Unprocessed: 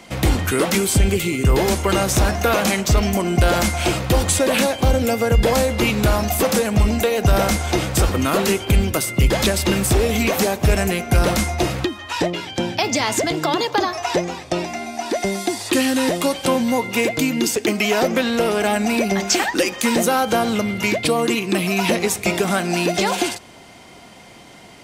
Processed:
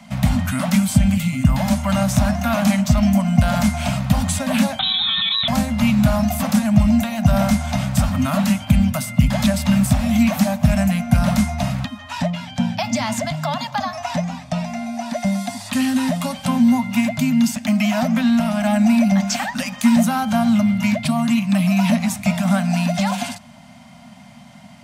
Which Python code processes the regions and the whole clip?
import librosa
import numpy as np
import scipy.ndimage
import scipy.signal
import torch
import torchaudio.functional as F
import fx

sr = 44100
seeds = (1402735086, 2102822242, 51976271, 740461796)

y = fx.chain(x, sr, fx.notch_comb(f0_hz=1100.0),
    fx.freq_invert(carrier_hz=3900),
    fx.env_flatten(amount_pct=100), at=(4.79, 5.48))
y = scipy.signal.sosfilt(scipy.signal.cheby1(4, 1.0, [250.0, 590.0], 'bandstop', fs=sr, output='sos'), y)
y = fx.peak_eq(y, sr, hz=220.0, db=12.5, octaves=2.2)
y = y * librosa.db_to_amplitude(-4.5)